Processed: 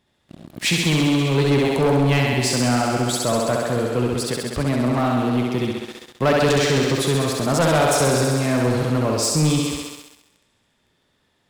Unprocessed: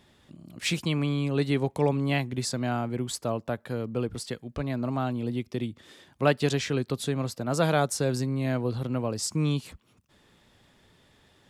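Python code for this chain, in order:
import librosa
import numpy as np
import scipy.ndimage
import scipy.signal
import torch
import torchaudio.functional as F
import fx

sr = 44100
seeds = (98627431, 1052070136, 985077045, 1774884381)

y = fx.echo_thinned(x, sr, ms=66, feedback_pct=80, hz=180.0, wet_db=-3.0)
y = fx.leveller(y, sr, passes=3)
y = y * librosa.db_to_amplitude(-2.5)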